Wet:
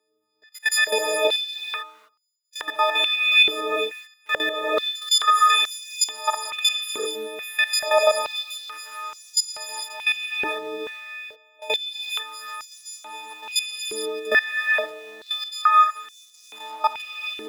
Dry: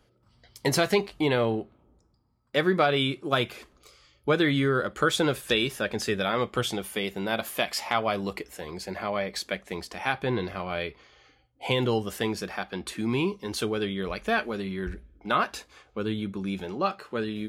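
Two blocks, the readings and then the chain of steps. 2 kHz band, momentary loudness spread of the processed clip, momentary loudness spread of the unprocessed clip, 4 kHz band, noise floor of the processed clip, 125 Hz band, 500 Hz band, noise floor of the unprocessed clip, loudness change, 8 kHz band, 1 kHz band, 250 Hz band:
+7.5 dB, 19 LU, 11 LU, +10.0 dB, −62 dBFS, below −30 dB, 0.0 dB, −66 dBFS, +6.0 dB, +10.5 dB, +7.5 dB, −14.0 dB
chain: every partial snapped to a pitch grid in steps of 6 semitones
in parallel at −10 dB: bit reduction 5 bits
on the sum: output level in coarse steps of 18 dB
reverb whose tail is shaped and stops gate 480 ms rising, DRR 0.5 dB
high-pass on a step sequencer 2.3 Hz 390–5,900 Hz
level −4.5 dB

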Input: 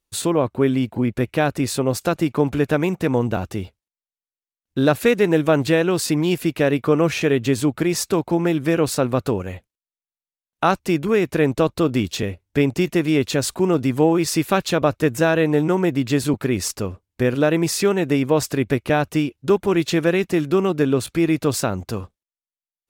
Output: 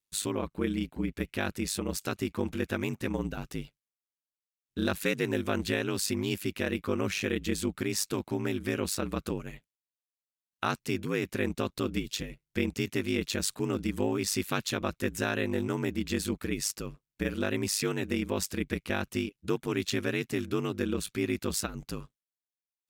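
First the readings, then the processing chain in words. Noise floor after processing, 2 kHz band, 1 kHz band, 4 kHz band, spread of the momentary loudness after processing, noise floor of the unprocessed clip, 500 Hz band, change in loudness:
below −85 dBFS, −8.5 dB, −13.5 dB, −6.5 dB, 5 LU, below −85 dBFS, −14.0 dB, −12.0 dB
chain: high-pass filter 180 Hz 6 dB per octave
parametric band 640 Hz −11 dB 1.8 octaves
ring modulation 51 Hz
level −3 dB

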